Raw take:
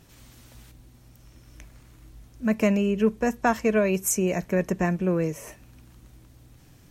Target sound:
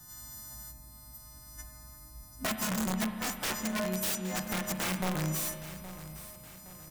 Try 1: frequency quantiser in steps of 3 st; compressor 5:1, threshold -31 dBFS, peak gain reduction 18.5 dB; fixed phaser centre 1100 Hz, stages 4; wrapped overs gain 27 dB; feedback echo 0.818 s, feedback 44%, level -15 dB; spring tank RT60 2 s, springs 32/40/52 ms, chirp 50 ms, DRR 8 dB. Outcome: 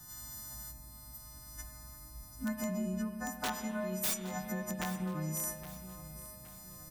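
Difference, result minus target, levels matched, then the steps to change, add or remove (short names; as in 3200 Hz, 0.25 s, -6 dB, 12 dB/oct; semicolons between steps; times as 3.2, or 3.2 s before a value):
compressor: peak gain reduction +5 dB
change: compressor 5:1, threshold -24.5 dBFS, peak gain reduction 13.5 dB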